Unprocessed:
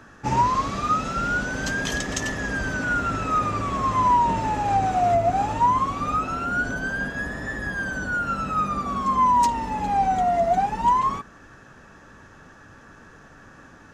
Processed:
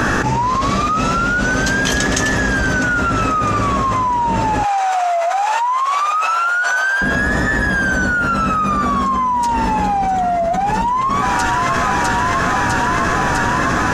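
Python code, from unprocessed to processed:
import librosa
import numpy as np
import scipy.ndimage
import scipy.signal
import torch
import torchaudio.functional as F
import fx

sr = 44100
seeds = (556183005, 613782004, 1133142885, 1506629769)

y = fx.highpass(x, sr, hz=750.0, slope=24, at=(4.63, 7.02))
y = fx.doubler(y, sr, ms=16.0, db=-12.0)
y = fx.echo_wet_highpass(y, sr, ms=653, feedback_pct=77, hz=1600.0, wet_db=-16.0)
y = fx.env_flatten(y, sr, amount_pct=100)
y = y * librosa.db_to_amplitude(-1.0)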